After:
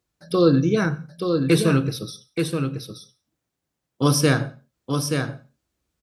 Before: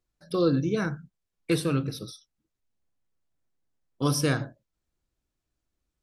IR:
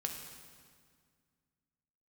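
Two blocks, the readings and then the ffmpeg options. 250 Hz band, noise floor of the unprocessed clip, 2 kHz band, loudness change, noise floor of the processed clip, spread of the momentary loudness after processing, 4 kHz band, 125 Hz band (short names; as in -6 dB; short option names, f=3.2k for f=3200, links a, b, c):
+8.0 dB, -84 dBFS, +8.0 dB, +5.5 dB, -82 dBFS, 14 LU, +7.5 dB, +8.0 dB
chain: -filter_complex "[0:a]highpass=66,aecho=1:1:878:0.531,asplit=2[a][b];[1:a]atrim=start_sample=2205,afade=t=out:st=0.23:d=0.01,atrim=end_sample=10584[c];[b][c]afir=irnorm=-1:irlink=0,volume=-12.5dB[d];[a][d]amix=inputs=2:normalize=0,volume=5dB"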